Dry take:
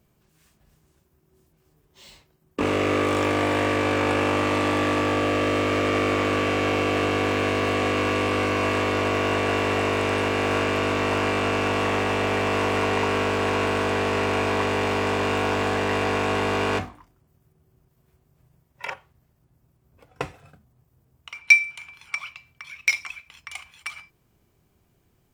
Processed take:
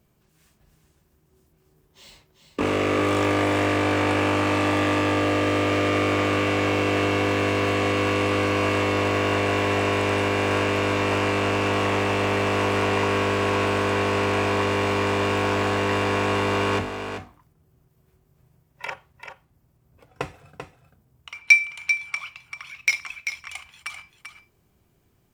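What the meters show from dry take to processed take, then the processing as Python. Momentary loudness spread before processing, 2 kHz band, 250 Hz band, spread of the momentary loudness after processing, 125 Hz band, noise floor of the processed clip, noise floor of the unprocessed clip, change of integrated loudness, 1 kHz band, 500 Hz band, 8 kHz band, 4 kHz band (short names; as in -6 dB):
13 LU, +0.5 dB, +1.0 dB, 14 LU, +2.5 dB, -65 dBFS, -66 dBFS, +0.5 dB, 0.0 dB, +0.5 dB, +0.5 dB, +0.5 dB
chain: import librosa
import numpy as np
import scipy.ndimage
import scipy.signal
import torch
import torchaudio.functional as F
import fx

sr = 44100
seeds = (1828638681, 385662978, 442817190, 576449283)

y = x + 10.0 ** (-8.0 / 20.0) * np.pad(x, (int(390 * sr / 1000.0), 0))[:len(x)]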